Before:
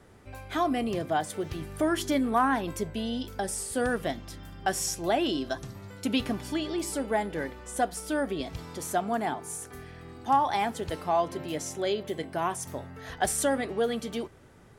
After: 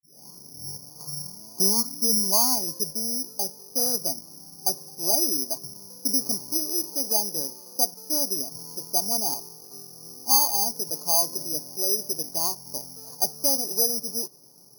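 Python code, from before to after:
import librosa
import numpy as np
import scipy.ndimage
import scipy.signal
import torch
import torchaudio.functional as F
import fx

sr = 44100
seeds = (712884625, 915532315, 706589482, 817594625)

y = fx.tape_start_head(x, sr, length_s=2.65)
y = scipy.signal.sosfilt(scipy.signal.ellip(3, 1.0, 40, [140.0, 1000.0], 'bandpass', fs=sr, output='sos'), y)
y = (np.kron(scipy.signal.resample_poly(y, 1, 8), np.eye(8)[0]) * 8)[:len(y)]
y = y * 10.0 ** (-4.5 / 20.0)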